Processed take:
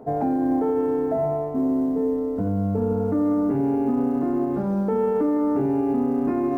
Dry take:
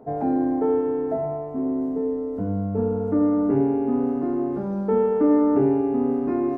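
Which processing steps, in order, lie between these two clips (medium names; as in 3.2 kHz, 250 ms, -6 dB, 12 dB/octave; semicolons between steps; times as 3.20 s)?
dynamic bell 390 Hz, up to -4 dB, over -34 dBFS, Q 3.7; reverse; upward compressor, threshold -26 dBFS; reverse; peak limiter -18.5 dBFS, peak gain reduction 8 dB; short-mantissa float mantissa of 6-bit; trim +3.5 dB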